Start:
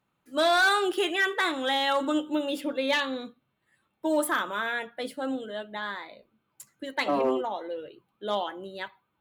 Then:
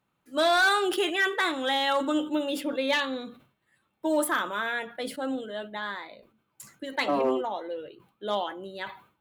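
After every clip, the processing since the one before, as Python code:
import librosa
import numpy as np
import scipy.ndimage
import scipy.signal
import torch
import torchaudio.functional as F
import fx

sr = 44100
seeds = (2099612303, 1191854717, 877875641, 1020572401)

y = fx.sustainer(x, sr, db_per_s=130.0)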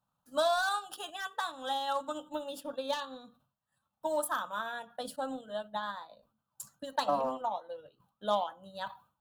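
y = fx.rider(x, sr, range_db=4, speed_s=2.0)
y = fx.fixed_phaser(y, sr, hz=890.0, stages=4)
y = fx.transient(y, sr, attack_db=5, sustain_db=-6)
y = F.gain(torch.from_numpy(y), -4.5).numpy()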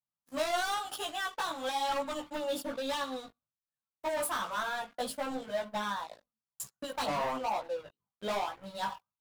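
y = fx.leveller(x, sr, passes=5)
y = fx.chorus_voices(y, sr, voices=2, hz=0.99, base_ms=17, depth_ms=3.0, mix_pct=45)
y = F.gain(torch.from_numpy(y), -8.5).numpy()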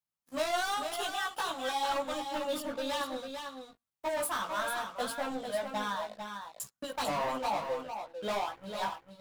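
y = x + 10.0 ** (-7.0 / 20.0) * np.pad(x, (int(448 * sr / 1000.0), 0))[:len(x)]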